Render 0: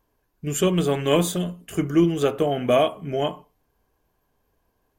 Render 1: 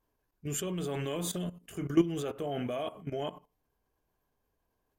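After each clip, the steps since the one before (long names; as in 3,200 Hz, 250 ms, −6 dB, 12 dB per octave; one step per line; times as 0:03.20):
output level in coarse steps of 15 dB
level −4 dB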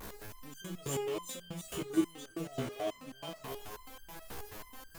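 converter with a step at zero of −34 dBFS
feedback echo with a high-pass in the loop 343 ms, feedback 50%, high-pass 960 Hz, level −4 dB
step-sequenced resonator 9.3 Hz 67–1,600 Hz
level +4 dB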